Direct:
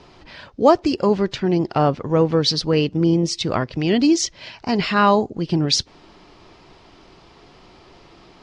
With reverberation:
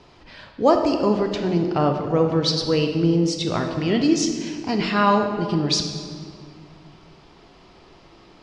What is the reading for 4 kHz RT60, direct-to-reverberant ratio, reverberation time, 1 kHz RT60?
1.4 s, 4.0 dB, 2.1 s, 1.9 s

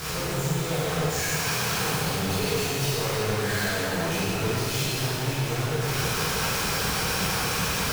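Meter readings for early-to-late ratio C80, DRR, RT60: -2.5 dB, -10.5 dB, 2.6 s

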